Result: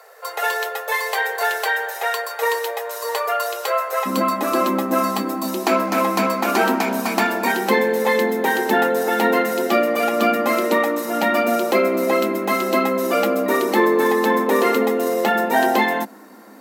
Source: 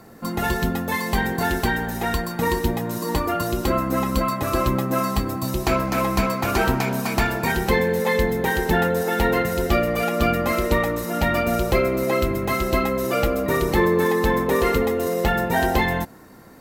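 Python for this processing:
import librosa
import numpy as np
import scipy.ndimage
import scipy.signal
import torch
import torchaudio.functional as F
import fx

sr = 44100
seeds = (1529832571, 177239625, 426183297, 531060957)

y = fx.cheby_ripple_highpass(x, sr, hz=fx.steps((0.0, 430.0), (4.05, 200.0)), ripple_db=3)
y = F.gain(torch.from_numpy(y), 5.0).numpy()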